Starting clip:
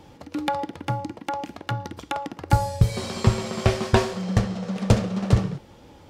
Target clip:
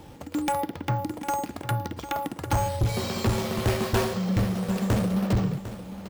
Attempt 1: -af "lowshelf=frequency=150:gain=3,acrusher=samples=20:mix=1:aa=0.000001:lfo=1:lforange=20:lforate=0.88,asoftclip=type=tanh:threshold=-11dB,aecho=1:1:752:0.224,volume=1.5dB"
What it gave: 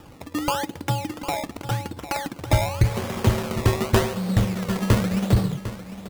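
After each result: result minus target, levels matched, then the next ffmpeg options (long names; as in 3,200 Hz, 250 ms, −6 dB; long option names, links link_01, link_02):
sample-and-hold swept by an LFO: distortion +11 dB; soft clipping: distortion −7 dB
-af "lowshelf=frequency=150:gain=3,acrusher=samples=4:mix=1:aa=0.000001:lfo=1:lforange=4:lforate=0.88,asoftclip=type=tanh:threshold=-11dB,aecho=1:1:752:0.224,volume=1.5dB"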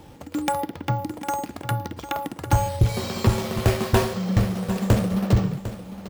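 soft clipping: distortion −7 dB
-af "lowshelf=frequency=150:gain=3,acrusher=samples=4:mix=1:aa=0.000001:lfo=1:lforange=4:lforate=0.88,asoftclip=type=tanh:threshold=-20dB,aecho=1:1:752:0.224,volume=1.5dB"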